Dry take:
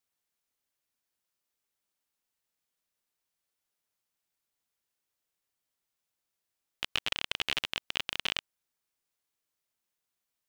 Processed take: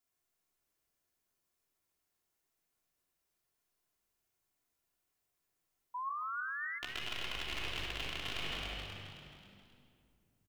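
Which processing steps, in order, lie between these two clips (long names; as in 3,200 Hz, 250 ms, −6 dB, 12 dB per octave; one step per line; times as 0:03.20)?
rectangular room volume 3,900 cubic metres, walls mixed, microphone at 3.1 metres
in parallel at −1 dB: brickwall limiter −20.5 dBFS, peak gain reduction 10 dB
on the sum: sound drawn into the spectrogram rise, 0:05.94–0:06.79, 970–2,100 Hz −31 dBFS
tuned comb filter 360 Hz, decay 0.57 s, mix 70%
echo with shifted repeats 267 ms, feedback 46%, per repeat +49 Hz, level −7 dB
reversed playback
downward compressor, threshold −35 dBFS, peak gain reduction 6.5 dB
reversed playback
parametric band 3,400 Hz −4 dB 1.9 octaves
level +2.5 dB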